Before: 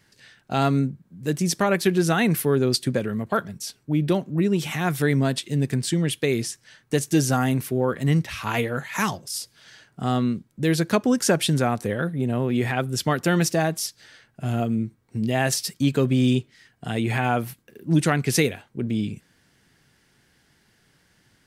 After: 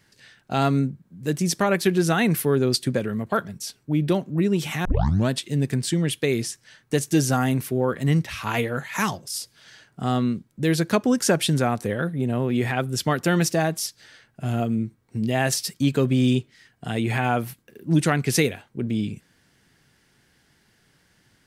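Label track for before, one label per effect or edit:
4.850000	4.850000	tape start 0.44 s

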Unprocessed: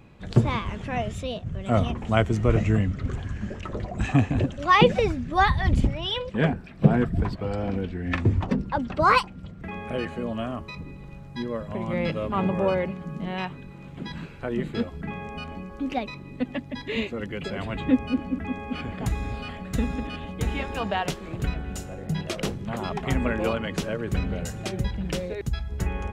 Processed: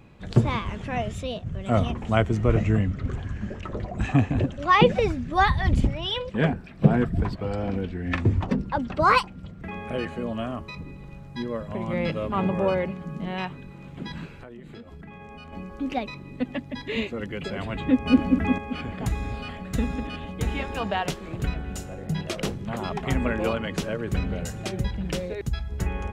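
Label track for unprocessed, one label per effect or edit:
2.170000	5.020000	treble shelf 4.1 kHz -5 dB
14.350000	15.530000	compression 16:1, threshold -38 dBFS
18.060000	18.580000	gain +7.5 dB

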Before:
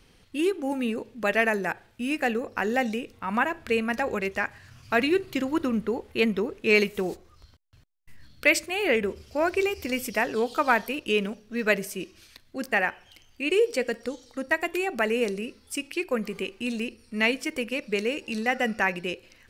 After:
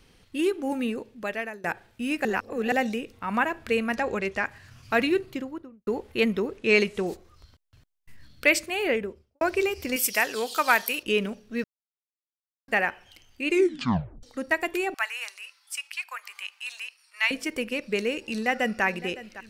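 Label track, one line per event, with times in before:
0.820000	1.640000	fade out, to -21 dB
2.250000	2.720000	reverse
3.940000	4.450000	low-pass 8.9 kHz
5.000000	5.870000	studio fade out
6.570000	7.070000	low-pass 9.7 kHz 24 dB/octave
8.750000	9.410000	studio fade out
9.960000	11.030000	tilt EQ +3.5 dB/octave
11.640000	12.680000	mute
13.490000	13.490000	tape stop 0.74 s
14.940000	17.310000	steep high-pass 870 Hz
18.230000	18.840000	echo throw 560 ms, feedback 65%, level -16 dB

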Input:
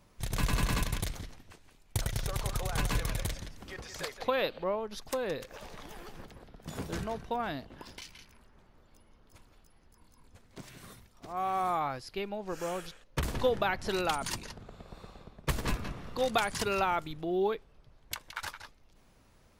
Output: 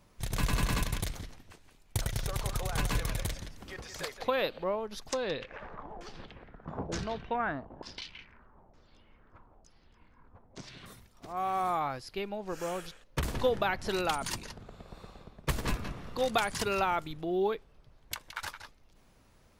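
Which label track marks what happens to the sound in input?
5.100000	10.860000	LFO low-pass saw down 1.1 Hz 650–6600 Hz

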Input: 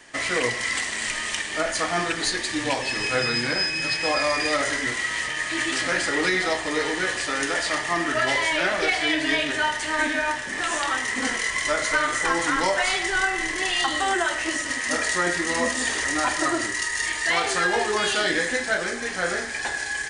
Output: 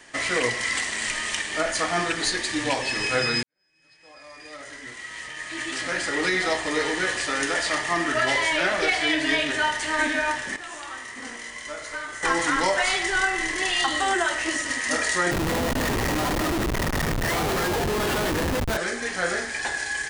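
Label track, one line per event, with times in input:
3.430000	6.510000	fade in quadratic
10.560000	12.230000	feedback comb 59 Hz, decay 1.9 s, mix 80%
15.310000	18.770000	Schmitt trigger flips at -21.5 dBFS

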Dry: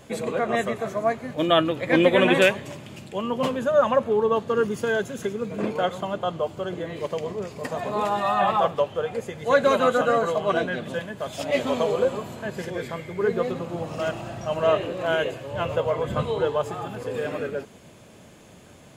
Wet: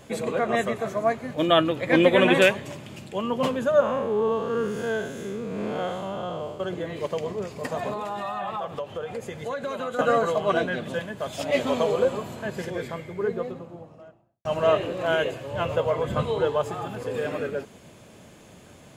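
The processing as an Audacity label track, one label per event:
3.800000	6.600000	spectral blur width 168 ms
7.930000	9.990000	compression 5:1, threshold -28 dBFS
12.540000	14.450000	studio fade out

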